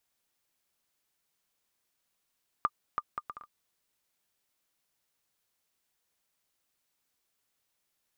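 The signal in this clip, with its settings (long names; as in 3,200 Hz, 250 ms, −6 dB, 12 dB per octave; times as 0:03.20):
bouncing ball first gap 0.33 s, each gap 0.6, 1,200 Hz, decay 47 ms −14.5 dBFS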